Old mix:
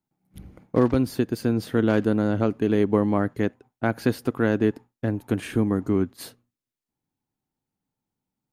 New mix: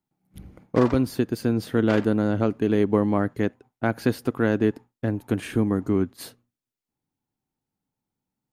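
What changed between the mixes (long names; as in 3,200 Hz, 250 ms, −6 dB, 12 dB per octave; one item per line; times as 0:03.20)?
background +5.5 dB
reverb: on, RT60 0.40 s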